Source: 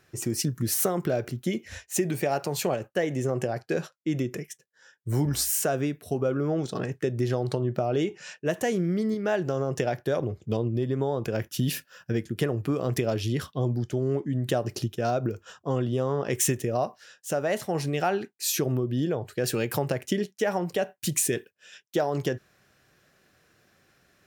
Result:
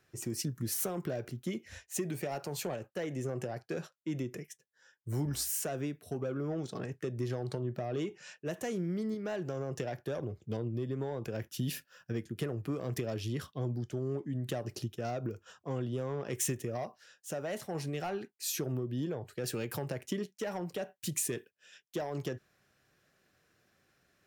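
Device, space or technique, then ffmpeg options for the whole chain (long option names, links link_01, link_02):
one-band saturation: -filter_complex "[0:a]acrossover=split=300|4500[link_01][link_02][link_03];[link_02]asoftclip=type=tanh:threshold=-24.5dB[link_04];[link_01][link_04][link_03]amix=inputs=3:normalize=0,volume=-8dB"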